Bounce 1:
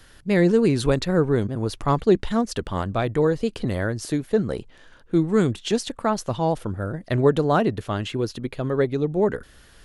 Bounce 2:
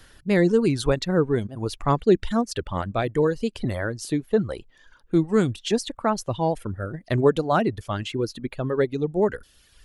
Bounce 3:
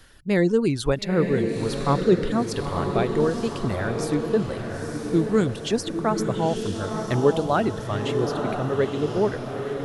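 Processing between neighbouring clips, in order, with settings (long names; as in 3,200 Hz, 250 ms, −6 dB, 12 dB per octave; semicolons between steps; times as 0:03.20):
reverb reduction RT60 1.2 s
feedback delay with all-pass diffusion 932 ms, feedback 50%, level −5 dB; level −1 dB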